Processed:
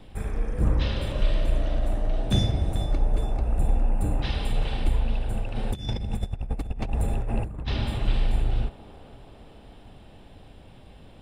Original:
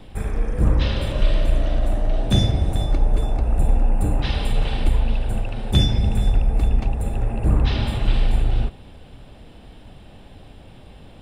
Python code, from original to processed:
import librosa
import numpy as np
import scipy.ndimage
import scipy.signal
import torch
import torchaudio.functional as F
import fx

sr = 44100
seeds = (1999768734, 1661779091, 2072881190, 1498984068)

y = fx.echo_wet_bandpass(x, sr, ms=445, feedback_pct=66, hz=640.0, wet_db=-13.5)
y = fx.over_compress(y, sr, threshold_db=-21.0, ratio=-0.5, at=(5.55, 7.68))
y = F.gain(torch.from_numpy(y), -5.0).numpy()